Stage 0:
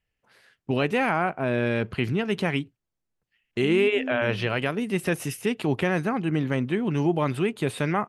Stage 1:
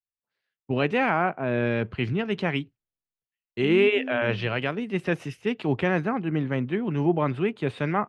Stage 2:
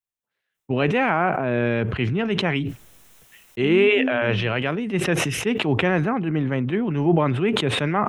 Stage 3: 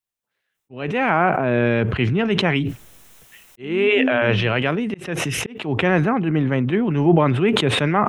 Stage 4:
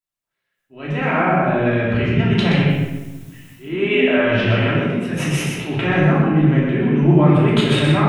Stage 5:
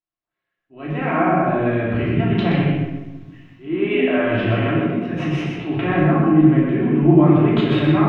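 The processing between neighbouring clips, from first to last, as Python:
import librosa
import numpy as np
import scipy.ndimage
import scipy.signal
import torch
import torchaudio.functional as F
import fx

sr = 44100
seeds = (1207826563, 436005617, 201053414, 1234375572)

y1 = scipy.signal.sosfilt(scipy.signal.butter(2, 4100.0, 'lowpass', fs=sr, output='sos'), x)
y1 = fx.band_widen(y1, sr, depth_pct=70)
y2 = fx.peak_eq(y1, sr, hz=4600.0, db=-9.5, octaves=0.23)
y2 = fx.sustainer(y2, sr, db_per_s=30.0)
y2 = F.gain(torch.from_numpy(y2), 2.5).numpy()
y3 = fx.auto_swell(y2, sr, attack_ms=469.0)
y3 = F.gain(torch.from_numpy(y3), 3.5).numpy()
y4 = y3 + 10.0 ** (-5.0 / 20.0) * np.pad(y3, (int(125 * sr / 1000.0), 0))[:len(y3)]
y4 = fx.room_shoebox(y4, sr, seeds[0], volume_m3=590.0, walls='mixed', distance_m=2.9)
y4 = F.gain(torch.from_numpy(y4), -7.5).numpy()
y5 = fx.air_absorb(y4, sr, metres=230.0)
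y5 = fx.small_body(y5, sr, hz=(320.0, 700.0, 1100.0), ring_ms=95, db=11)
y5 = F.gain(torch.from_numpy(y5), -2.5).numpy()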